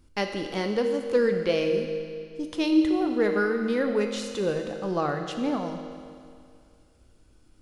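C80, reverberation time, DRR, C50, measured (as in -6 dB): 6.5 dB, 2.3 s, 4.0 dB, 5.5 dB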